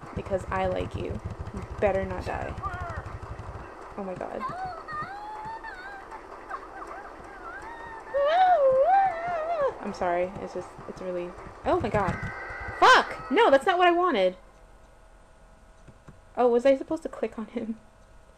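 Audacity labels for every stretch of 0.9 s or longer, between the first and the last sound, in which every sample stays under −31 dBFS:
14.320000	16.370000	silence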